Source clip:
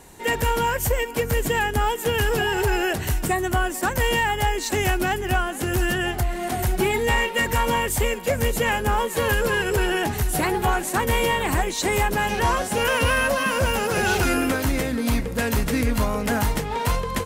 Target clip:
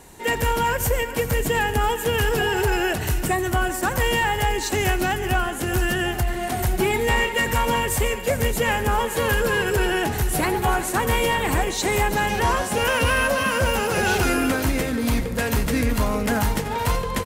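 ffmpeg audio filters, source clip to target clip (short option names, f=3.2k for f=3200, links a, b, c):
-af "acontrast=54,aecho=1:1:87|145|376|385:0.15|0.126|0.15|0.133,volume=-5.5dB"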